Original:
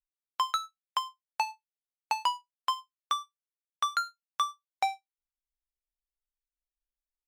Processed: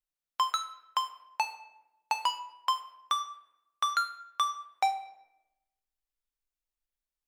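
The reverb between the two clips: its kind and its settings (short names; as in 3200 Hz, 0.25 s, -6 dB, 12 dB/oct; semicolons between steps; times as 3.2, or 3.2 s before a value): shoebox room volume 360 m³, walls mixed, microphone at 0.47 m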